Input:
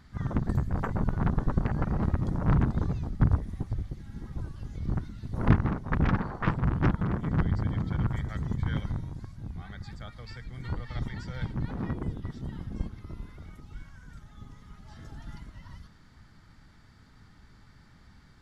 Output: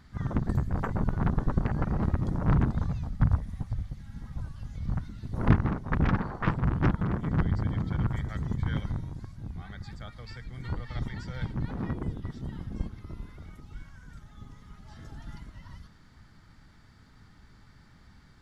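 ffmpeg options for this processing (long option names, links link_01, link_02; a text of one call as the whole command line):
ffmpeg -i in.wav -filter_complex "[0:a]asettb=1/sr,asplit=3[link_01][link_02][link_03];[link_01]atrim=end=2.754[link_04];[link_02]atrim=start=2.75:end=5.08,asetpts=PTS-STARTPTS,afade=type=in:duration=0.004:curve=qsin,afade=type=out:start_time=2.326:duration=0.004:curve=qsin,equalizer=frequency=360:width_type=o:width=0.7:gain=-13[link_05];[link_03]atrim=start=5.076[link_06];[link_04][link_05]acrossfade=duration=0.004:curve1=hsin:curve2=qsin[link_07];[link_07][link_06]acrossfade=duration=0.004:curve1=qsin:curve2=hsin" out.wav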